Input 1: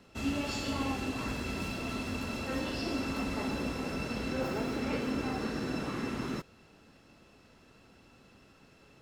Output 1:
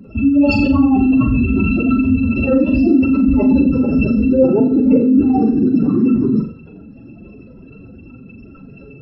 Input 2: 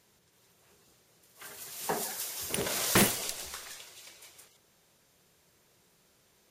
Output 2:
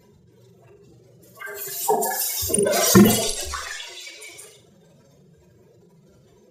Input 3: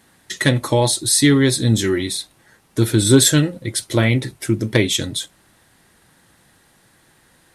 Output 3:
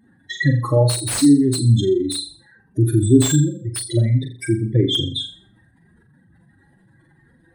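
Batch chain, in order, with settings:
spectral contrast raised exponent 3.2; flutter echo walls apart 7.2 m, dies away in 0.4 s; slew limiter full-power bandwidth 590 Hz; normalise peaks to -1.5 dBFS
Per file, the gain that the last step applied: +21.0, +12.5, -0.5 dB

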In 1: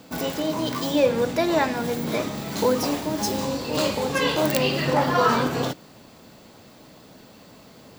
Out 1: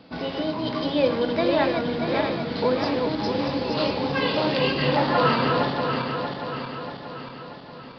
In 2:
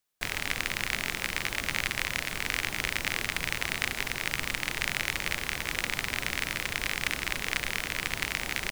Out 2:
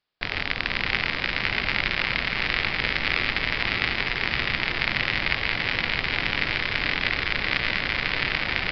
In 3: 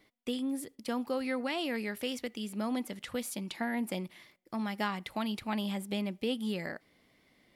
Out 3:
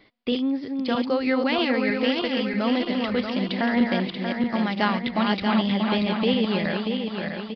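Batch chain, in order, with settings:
regenerating reverse delay 0.317 s, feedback 72%, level -4 dB; downsampling 11025 Hz; match loudness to -24 LUFS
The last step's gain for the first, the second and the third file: -2.0, +4.0, +9.5 dB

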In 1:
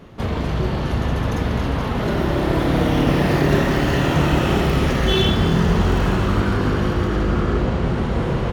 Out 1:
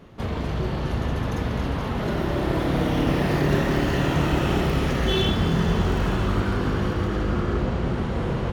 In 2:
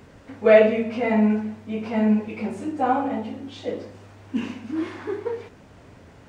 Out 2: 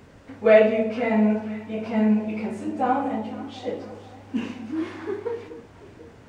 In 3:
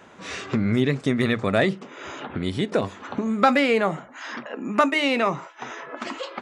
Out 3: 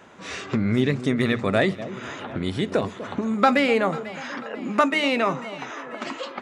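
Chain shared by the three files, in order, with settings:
echo with dull and thin repeats by turns 0.246 s, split 870 Hz, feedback 70%, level -13 dB; match loudness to -24 LUFS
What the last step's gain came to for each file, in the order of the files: -5.0, -1.0, -0.5 dB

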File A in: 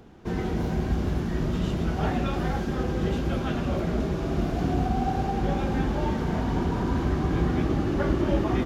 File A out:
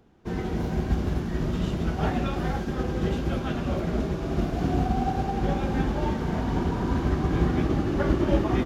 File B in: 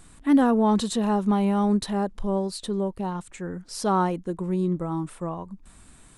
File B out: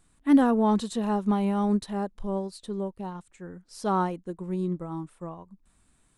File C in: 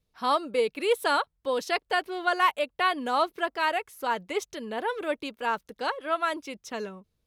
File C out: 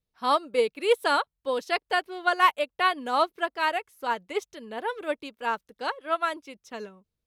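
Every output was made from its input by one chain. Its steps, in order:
upward expander 1.5:1, over -43 dBFS; match loudness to -27 LUFS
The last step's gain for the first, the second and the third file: +2.5, +0.5, +3.5 dB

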